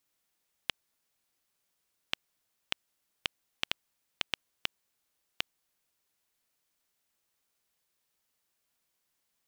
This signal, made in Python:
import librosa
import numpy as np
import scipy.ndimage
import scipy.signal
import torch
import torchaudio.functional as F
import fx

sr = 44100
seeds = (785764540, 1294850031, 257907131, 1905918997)

y = fx.geiger_clicks(sr, seeds[0], length_s=4.98, per_s=2.0, level_db=-9.0)